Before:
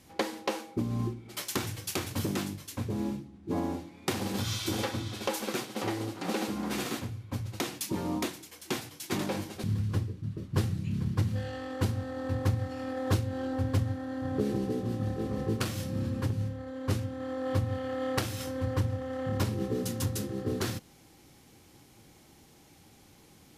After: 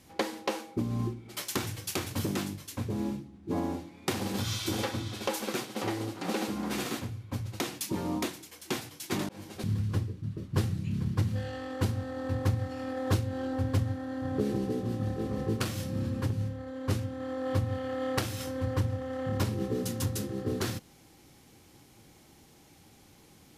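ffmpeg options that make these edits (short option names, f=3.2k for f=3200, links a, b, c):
-filter_complex "[0:a]asplit=2[a][b];[a]atrim=end=9.29,asetpts=PTS-STARTPTS,afade=t=out:st=9.286:d=0.004:c=hsin[c];[b]atrim=start=9.29,asetpts=PTS-STARTPTS,afade=t=in:d=0.3[d];[c][d]concat=n=2:v=0:a=1"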